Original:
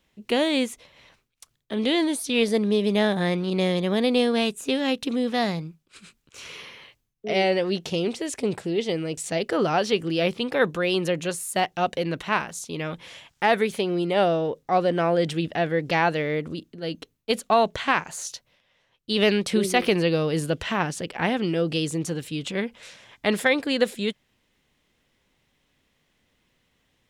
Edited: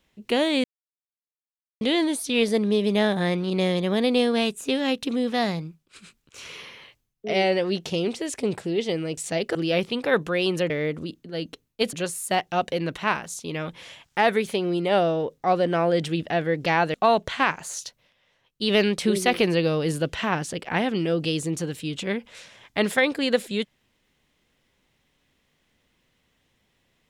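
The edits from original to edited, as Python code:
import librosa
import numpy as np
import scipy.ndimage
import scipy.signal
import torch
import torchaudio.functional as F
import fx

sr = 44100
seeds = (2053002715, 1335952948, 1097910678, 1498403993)

y = fx.edit(x, sr, fx.silence(start_s=0.64, length_s=1.17),
    fx.cut(start_s=9.55, length_s=0.48),
    fx.move(start_s=16.19, length_s=1.23, to_s=11.18), tone=tone)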